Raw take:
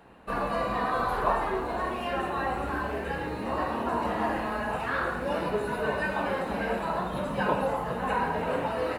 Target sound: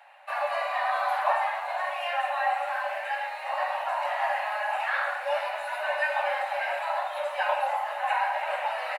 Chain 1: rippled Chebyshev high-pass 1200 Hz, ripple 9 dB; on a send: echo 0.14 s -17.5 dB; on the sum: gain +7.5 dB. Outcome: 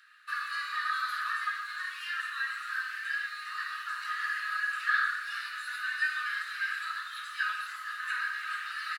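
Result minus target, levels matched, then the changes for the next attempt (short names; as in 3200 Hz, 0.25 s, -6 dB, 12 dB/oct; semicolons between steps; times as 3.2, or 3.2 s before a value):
1000 Hz band -6.0 dB
change: rippled Chebyshev high-pass 560 Hz, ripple 9 dB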